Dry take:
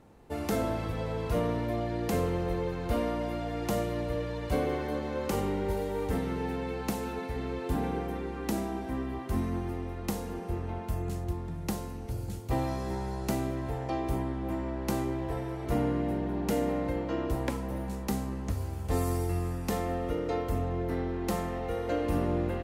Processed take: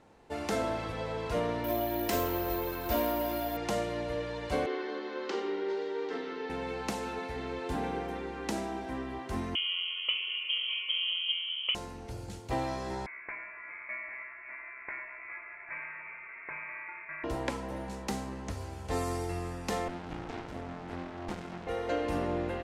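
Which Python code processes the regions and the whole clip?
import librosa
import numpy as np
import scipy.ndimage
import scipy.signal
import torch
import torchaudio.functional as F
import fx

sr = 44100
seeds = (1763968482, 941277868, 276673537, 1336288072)

y = fx.chain(x, sr, fx.comb(ms=3.1, depth=0.58),
    fx.resample_bad(factor=3, down='none', up='zero_stuff'), at=(1.64, 3.57))
y = fx.chain(y, sr, fx.cabinet(low_hz=280.0, low_slope=24, high_hz=5100.0, hz=(380.0, 580.0, 850.0, 2400.0), db=(6, -10, -7, -4)),
    fx.hum_notches(base_hz=50, count=9), at=(4.66, 6.5))
y = fx.chain(y, sr, fx.highpass(hz=72.0, slope=12),
    fx.freq_invert(carrier_hz=3200),
    fx.fixed_phaser(hz=1100.0, stages=8), at=(9.55, 11.75))
y = fx.chain(y, sr, fx.highpass(hz=900.0, slope=24),
    fx.freq_invert(carrier_hz=3000), at=(13.06, 17.24))
y = fx.chain(y, sr, fx.highpass(hz=180.0, slope=6),
    fx.running_max(window=65), at=(19.88, 21.67))
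y = scipy.signal.sosfilt(scipy.signal.butter(2, 7700.0, 'lowpass', fs=sr, output='sos'), y)
y = fx.low_shelf(y, sr, hz=350.0, db=-10.5)
y = fx.notch(y, sr, hz=1200.0, q=21.0)
y = F.gain(torch.from_numpy(y), 2.5).numpy()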